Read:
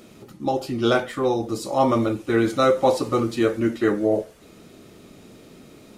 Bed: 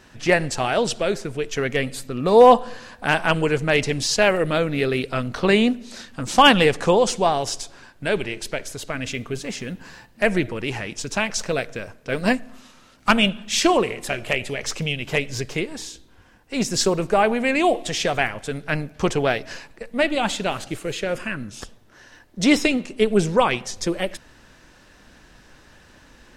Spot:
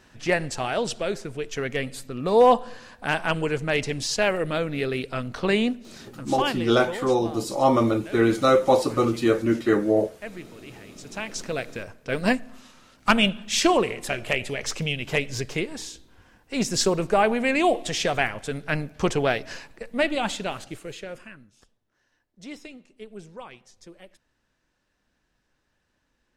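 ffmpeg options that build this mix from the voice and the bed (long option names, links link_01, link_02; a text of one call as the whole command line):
ffmpeg -i stem1.wav -i stem2.wav -filter_complex "[0:a]adelay=5850,volume=0dB[link_01];[1:a]volume=11dB,afade=type=out:start_time=5.66:duration=0.98:silence=0.223872,afade=type=in:start_time=10.89:duration=1.07:silence=0.158489,afade=type=out:start_time=19.88:duration=1.62:silence=0.0891251[link_02];[link_01][link_02]amix=inputs=2:normalize=0" out.wav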